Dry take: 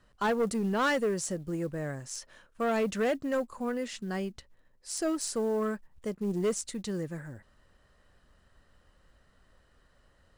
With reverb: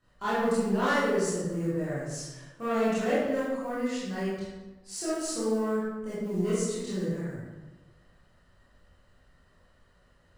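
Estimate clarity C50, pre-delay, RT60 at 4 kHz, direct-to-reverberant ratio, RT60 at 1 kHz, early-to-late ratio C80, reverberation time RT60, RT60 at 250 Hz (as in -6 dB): -2.5 dB, 19 ms, 0.75 s, -12.0 dB, 1.1 s, 1.0 dB, 1.2 s, 1.3 s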